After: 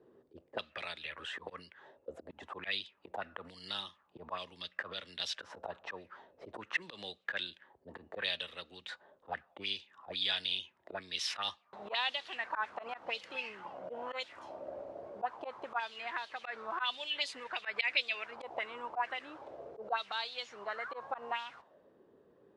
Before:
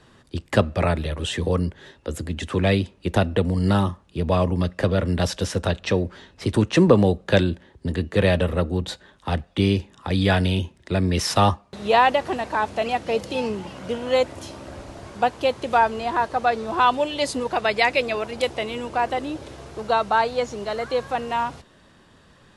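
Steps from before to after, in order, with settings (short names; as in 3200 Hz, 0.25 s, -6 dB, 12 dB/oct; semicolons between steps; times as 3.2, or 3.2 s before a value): auto swell 0.104 s; auto-wah 390–3600 Hz, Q 3.4, up, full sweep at -19 dBFS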